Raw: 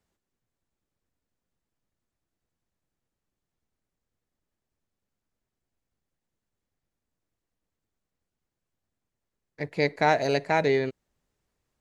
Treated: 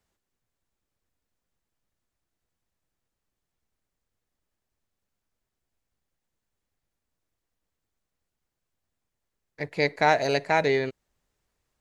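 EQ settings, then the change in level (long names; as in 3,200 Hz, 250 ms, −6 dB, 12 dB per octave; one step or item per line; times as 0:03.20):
parametric band 210 Hz −4.5 dB 2.6 octaves
+2.5 dB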